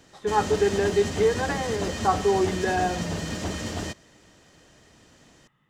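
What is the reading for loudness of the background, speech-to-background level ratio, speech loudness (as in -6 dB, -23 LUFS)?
-31.0 LUFS, 5.5 dB, -25.5 LUFS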